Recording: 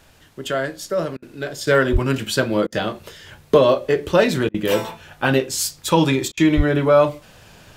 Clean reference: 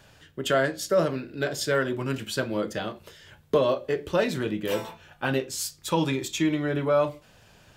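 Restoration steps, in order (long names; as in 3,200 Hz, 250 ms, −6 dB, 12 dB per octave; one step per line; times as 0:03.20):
0:01.92–0:02.04: high-pass filter 140 Hz 24 dB per octave
0:06.56–0:06.68: high-pass filter 140 Hz 24 dB per octave
repair the gap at 0:01.17/0:02.67/0:04.49/0:06.32, 52 ms
downward expander −40 dBFS, range −21 dB
level 0 dB, from 0:01.67 −8.5 dB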